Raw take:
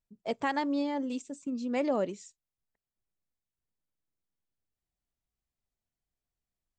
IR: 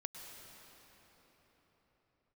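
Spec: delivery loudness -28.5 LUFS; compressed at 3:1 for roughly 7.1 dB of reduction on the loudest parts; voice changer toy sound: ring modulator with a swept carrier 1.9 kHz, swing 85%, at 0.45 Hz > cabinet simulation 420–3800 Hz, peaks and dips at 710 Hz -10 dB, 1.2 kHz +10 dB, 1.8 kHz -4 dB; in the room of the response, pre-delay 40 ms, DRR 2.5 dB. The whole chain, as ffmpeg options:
-filter_complex "[0:a]acompressor=threshold=0.02:ratio=3,asplit=2[s0][s1];[1:a]atrim=start_sample=2205,adelay=40[s2];[s1][s2]afir=irnorm=-1:irlink=0,volume=1[s3];[s0][s3]amix=inputs=2:normalize=0,aeval=exprs='val(0)*sin(2*PI*1900*n/s+1900*0.85/0.45*sin(2*PI*0.45*n/s))':c=same,highpass=420,equalizer=f=710:t=q:w=4:g=-10,equalizer=f=1200:t=q:w=4:g=10,equalizer=f=1800:t=q:w=4:g=-4,lowpass=f=3800:w=0.5412,lowpass=f=3800:w=1.3066,volume=2.82"

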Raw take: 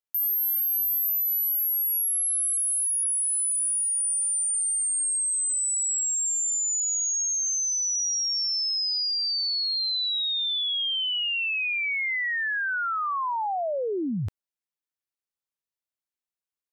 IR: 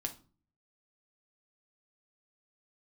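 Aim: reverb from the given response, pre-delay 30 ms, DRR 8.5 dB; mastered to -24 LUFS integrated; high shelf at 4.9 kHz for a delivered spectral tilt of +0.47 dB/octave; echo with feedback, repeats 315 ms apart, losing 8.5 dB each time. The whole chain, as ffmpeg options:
-filter_complex "[0:a]highshelf=f=4900:g=5.5,aecho=1:1:315|630|945|1260:0.376|0.143|0.0543|0.0206,asplit=2[s0][s1];[1:a]atrim=start_sample=2205,adelay=30[s2];[s1][s2]afir=irnorm=-1:irlink=0,volume=0.376[s3];[s0][s3]amix=inputs=2:normalize=0,volume=0.531"

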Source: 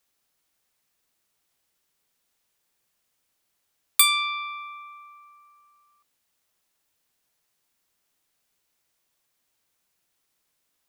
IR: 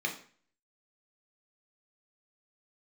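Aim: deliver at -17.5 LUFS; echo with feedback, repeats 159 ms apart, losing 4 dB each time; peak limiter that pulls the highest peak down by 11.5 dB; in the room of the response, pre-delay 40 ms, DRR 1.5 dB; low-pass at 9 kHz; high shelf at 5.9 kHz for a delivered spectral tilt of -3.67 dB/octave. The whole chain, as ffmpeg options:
-filter_complex "[0:a]lowpass=9000,highshelf=f=5900:g=-5,alimiter=limit=0.106:level=0:latency=1,aecho=1:1:159|318|477|636|795|954|1113|1272|1431:0.631|0.398|0.25|0.158|0.0994|0.0626|0.0394|0.0249|0.0157,asplit=2[s0][s1];[1:a]atrim=start_sample=2205,adelay=40[s2];[s1][s2]afir=irnorm=-1:irlink=0,volume=0.422[s3];[s0][s3]amix=inputs=2:normalize=0,volume=4.47"

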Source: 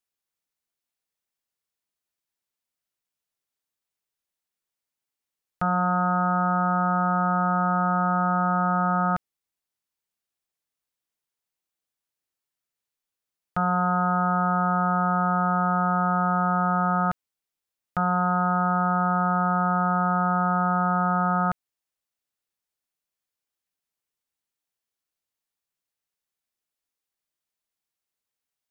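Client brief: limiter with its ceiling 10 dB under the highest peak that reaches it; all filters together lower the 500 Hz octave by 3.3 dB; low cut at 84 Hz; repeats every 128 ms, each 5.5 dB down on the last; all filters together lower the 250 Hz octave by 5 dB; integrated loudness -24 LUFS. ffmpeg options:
-af "highpass=84,equalizer=f=250:t=o:g=-8.5,equalizer=f=500:t=o:g=-3.5,alimiter=level_in=1.12:limit=0.0631:level=0:latency=1,volume=0.891,aecho=1:1:128|256|384|512|640|768|896:0.531|0.281|0.149|0.079|0.0419|0.0222|0.0118,volume=2.99"

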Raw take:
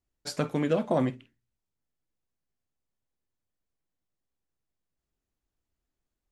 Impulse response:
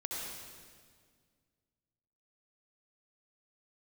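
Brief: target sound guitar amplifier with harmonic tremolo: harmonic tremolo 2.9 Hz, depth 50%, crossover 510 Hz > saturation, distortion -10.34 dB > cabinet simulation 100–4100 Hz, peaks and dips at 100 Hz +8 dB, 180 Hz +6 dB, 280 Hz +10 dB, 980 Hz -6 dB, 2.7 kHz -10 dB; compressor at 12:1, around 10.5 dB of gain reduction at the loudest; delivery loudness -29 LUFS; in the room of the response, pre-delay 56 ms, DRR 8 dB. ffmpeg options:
-filter_complex "[0:a]acompressor=threshold=0.0282:ratio=12,asplit=2[s0][s1];[1:a]atrim=start_sample=2205,adelay=56[s2];[s1][s2]afir=irnorm=-1:irlink=0,volume=0.316[s3];[s0][s3]amix=inputs=2:normalize=0,acrossover=split=510[s4][s5];[s4]aeval=exprs='val(0)*(1-0.5/2+0.5/2*cos(2*PI*2.9*n/s))':c=same[s6];[s5]aeval=exprs='val(0)*(1-0.5/2-0.5/2*cos(2*PI*2.9*n/s))':c=same[s7];[s6][s7]amix=inputs=2:normalize=0,asoftclip=threshold=0.0168,highpass=100,equalizer=f=100:t=q:w=4:g=8,equalizer=f=180:t=q:w=4:g=6,equalizer=f=280:t=q:w=4:g=10,equalizer=f=980:t=q:w=4:g=-6,equalizer=f=2700:t=q:w=4:g=-10,lowpass=f=4100:w=0.5412,lowpass=f=4100:w=1.3066,volume=3.55"

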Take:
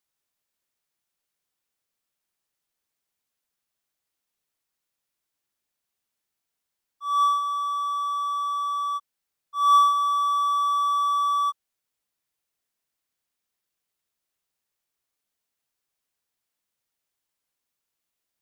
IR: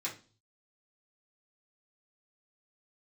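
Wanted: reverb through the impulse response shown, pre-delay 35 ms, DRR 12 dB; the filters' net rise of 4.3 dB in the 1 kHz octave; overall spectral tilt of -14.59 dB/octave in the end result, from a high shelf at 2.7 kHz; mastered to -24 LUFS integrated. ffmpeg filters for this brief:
-filter_complex "[0:a]equalizer=f=1000:t=o:g=5.5,highshelf=f=2700:g=-3,asplit=2[s0][s1];[1:a]atrim=start_sample=2205,adelay=35[s2];[s1][s2]afir=irnorm=-1:irlink=0,volume=0.188[s3];[s0][s3]amix=inputs=2:normalize=0,volume=0.447"

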